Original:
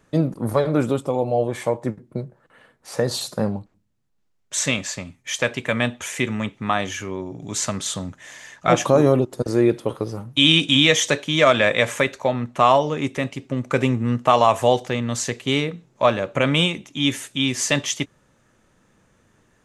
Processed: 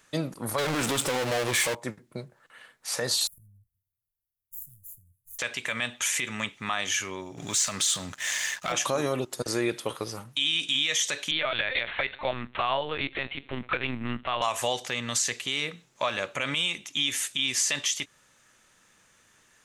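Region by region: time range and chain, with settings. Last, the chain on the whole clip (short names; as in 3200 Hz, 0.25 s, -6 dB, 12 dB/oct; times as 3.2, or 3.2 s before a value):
0.58–1.75 bell 730 Hz -3.5 dB 0.87 oct + power-law curve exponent 0.5 + Doppler distortion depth 0.13 ms
3.27–5.39 minimum comb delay 0.3 ms + inverse Chebyshev band-stop 350–4600 Hz, stop band 60 dB + compressor 2.5:1, threshold -48 dBFS
7.37–8.72 compressor 3:1, threshold -30 dBFS + sample leveller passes 2
11.31–14.42 upward compressor, threshold -29 dBFS + LPC vocoder at 8 kHz pitch kept
whole clip: tilt shelf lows -9.5 dB; compressor 2:1, threshold -21 dBFS; limiter -13.5 dBFS; gain -2 dB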